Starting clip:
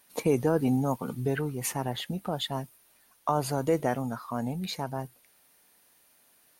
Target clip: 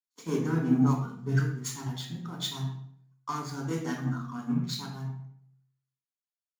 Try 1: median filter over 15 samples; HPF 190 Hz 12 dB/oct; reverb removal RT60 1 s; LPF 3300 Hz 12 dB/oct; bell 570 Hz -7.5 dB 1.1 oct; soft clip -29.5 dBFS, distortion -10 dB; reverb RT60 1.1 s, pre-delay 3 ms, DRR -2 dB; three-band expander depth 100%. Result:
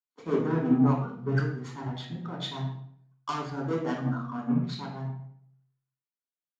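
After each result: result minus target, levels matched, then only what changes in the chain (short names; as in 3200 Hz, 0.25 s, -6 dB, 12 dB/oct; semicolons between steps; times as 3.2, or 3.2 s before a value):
500 Hz band +4.5 dB; 4000 Hz band -4.0 dB
change: bell 570 Hz -19 dB 1.1 oct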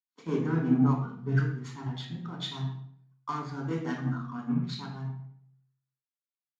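4000 Hz band -3.0 dB
remove: LPF 3300 Hz 12 dB/oct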